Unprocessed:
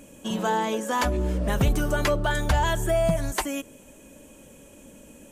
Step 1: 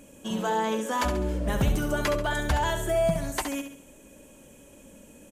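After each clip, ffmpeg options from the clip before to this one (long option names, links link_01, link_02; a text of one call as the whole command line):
ffmpeg -i in.wav -af "aecho=1:1:68|136|204|272|340:0.398|0.171|0.0736|0.0317|0.0136,volume=-3dB" out.wav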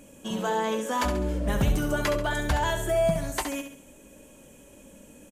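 ffmpeg -i in.wav -filter_complex "[0:a]asplit=2[link_01][link_02];[link_02]adelay=20,volume=-12.5dB[link_03];[link_01][link_03]amix=inputs=2:normalize=0" out.wav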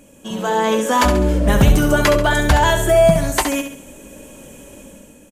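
ffmpeg -i in.wav -af "dynaudnorm=framelen=120:gausssize=9:maxgain=9dB,volume=3dB" out.wav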